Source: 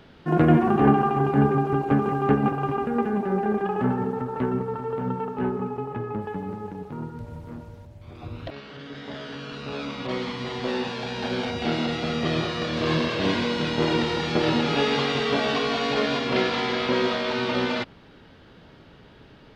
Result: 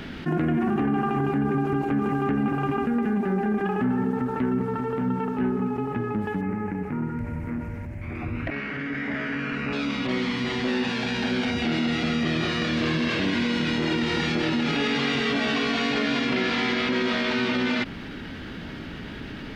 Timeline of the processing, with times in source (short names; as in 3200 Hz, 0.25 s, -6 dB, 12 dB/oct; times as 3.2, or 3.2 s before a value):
6.41–9.73 resonant high shelf 2800 Hz -7.5 dB, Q 3
whole clip: ten-band EQ 125 Hz -4 dB, 250 Hz +5 dB, 500 Hz -7 dB, 1000 Hz -5 dB, 2000 Hz +4 dB, 4000 Hz -3 dB; limiter -17.5 dBFS; fast leveller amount 50%